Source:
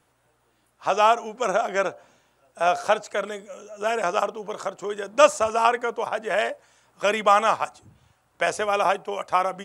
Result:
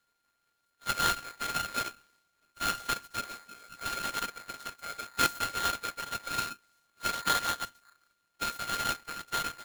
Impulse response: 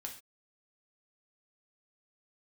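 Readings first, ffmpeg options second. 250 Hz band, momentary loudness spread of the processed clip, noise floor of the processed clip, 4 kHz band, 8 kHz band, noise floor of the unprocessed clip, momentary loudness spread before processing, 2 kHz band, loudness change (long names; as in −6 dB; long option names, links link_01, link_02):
−8.5 dB, 12 LU, −77 dBFS, −0.5 dB, −0.5 dB, −67 dBFS, 13 LU, −6.5 dB, −9.0 dB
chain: -af "afftfilt=real='hypot(re,im)*cos(2*PI*random(0))':imag='hypot(re,im)*sin(2*PI*random(1))':win_size=512:overlap=0.75,aeval=exprs='abs(val(0))':channel_layout=same,aeval=exprs='val(0)*sgn(sin(2*PI*1400*n/s))':channel_layout=same,volume=-4.5dB"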